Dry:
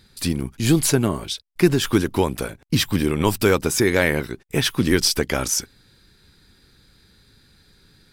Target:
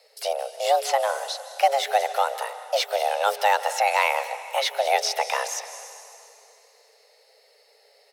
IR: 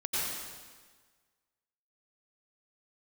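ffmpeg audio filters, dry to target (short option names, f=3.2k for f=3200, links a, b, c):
-filter_complex "[0:a]asplit=2[a][b];[1:a]atrim=start_sample=2205,asetrate=24255,aresample=44100[c];[b][c]afir=irnorm=-1:irlink=0,volume=-25dB[d];[a][d]amix=inputs=2:normalize=0,acrossover=split=5100[e][f];[f]acompressor=threshold=-34dB:ratio=4:attack=1:release=60[g];[e][g]amix=inputs=2:normalize=0,asplit=2[h][i];[i]adelay=150,highpass=300,lowpass=3.4k,asoftclip=type=hard:threshold=-12.5dB,volume=-17dB[j];[h][j]amix=inputs=2:normalize=0,afreqshift=410,highpass=490,volume=-3dB"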